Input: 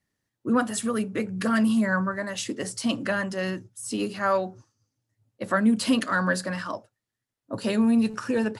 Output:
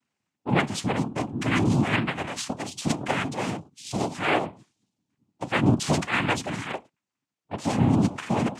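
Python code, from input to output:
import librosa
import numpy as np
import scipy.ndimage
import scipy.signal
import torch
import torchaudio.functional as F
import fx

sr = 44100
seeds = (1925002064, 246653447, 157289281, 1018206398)

y = fx.noise_vocoder(x, sr, seeds[0], bands=4)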